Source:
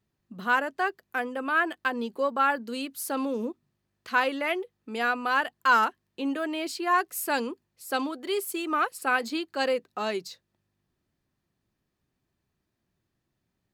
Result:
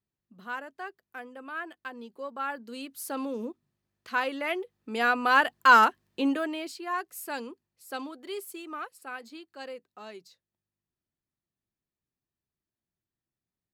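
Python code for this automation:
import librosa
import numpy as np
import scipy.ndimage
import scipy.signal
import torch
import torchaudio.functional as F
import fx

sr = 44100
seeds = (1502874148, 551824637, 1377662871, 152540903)

y = fx.gain(x, sr, db=fx.line((2.16, -12.0), (3.05, -4.0), (4.26, -4.0), (5.38, 4.0), (6.24, 4.0), (6.78, -8.0), (8.38, -8.0), (9.09, -14.5)))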